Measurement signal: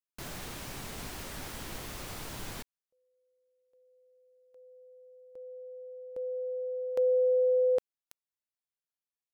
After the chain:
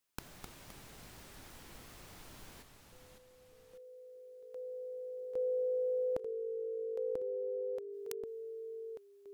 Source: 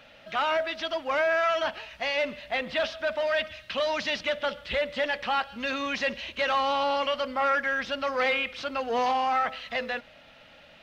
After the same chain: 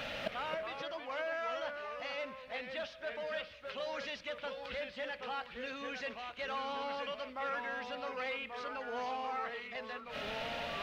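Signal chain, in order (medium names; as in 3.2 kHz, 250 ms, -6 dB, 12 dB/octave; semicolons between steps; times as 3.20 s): inverted gate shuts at -35 dBFS, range -25 dB; ever faster or slower copies 235 ms, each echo -2 st, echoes 2, each echo -6 dB; trim +11.5 dB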